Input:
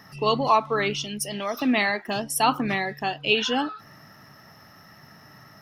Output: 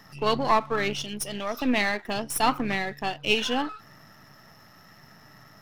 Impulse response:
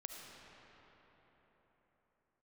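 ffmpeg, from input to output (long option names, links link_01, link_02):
-af "aeval=exprs='if(lt(val(0),0),0.447*val(0),val(0))':channel_layout=same"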